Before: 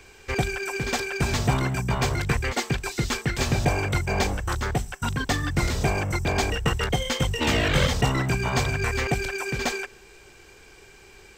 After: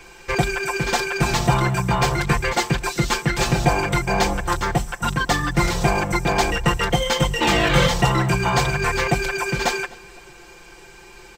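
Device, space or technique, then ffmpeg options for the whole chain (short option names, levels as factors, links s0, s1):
parallel distortion: -filter_complex "[0:a]asplit=2[s0][s1];[s1]asoftclip=type=hard:threshold=0.0841,volume=0.376[s2];[s0][s2]amix=inputs=2:normalize=0,equalizer=f=960:t=o:w=0.81:g=5,aecho=1:1:5.8:0.82,asplit=2[s3][s4];[s4]adelay=254,lowpass=f=4800:p=1,volume=0.0794,asplit=2[s5][s6];[s6]adelay=254,lowpass=f=4800:p=1,volume=0.48,asplit=2[s7][s8];[s8]adelay=254,lowpass=f=4800:p=1,volume=0.48[s9];[s3][s5][s7][s9]amix=inputs=4:normalize=0"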